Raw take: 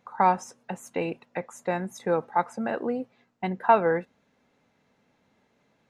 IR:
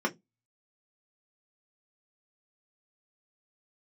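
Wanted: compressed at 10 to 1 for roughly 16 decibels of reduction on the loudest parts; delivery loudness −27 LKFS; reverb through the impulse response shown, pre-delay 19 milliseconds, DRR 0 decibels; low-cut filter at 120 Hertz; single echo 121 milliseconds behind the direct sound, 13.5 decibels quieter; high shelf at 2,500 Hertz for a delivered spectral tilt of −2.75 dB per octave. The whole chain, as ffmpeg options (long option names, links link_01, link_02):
-filter_complex "[0:a]highpass=120,highshelf=frequency=2500:gain=-3.5,acompressor=threshold=-30dB:ratio=10,aecho=1:1:121:0.211,asplit=2[link_01][link_02];[1:a]atrim=start_sample=2205,adelay=19[link_03];[link_02][link_03]afir=irnorm=-1:irlink=0,volume=-9dB[link_04];[link_01][link_04]amix=inputs=2:normalize=0,volume=5dB"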